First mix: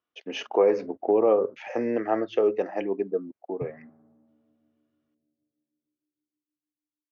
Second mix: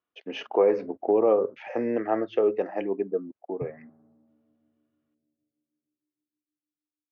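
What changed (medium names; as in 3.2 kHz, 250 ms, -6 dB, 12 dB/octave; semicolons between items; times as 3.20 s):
background: add distance through air 350 m; master: add distance through air 160 m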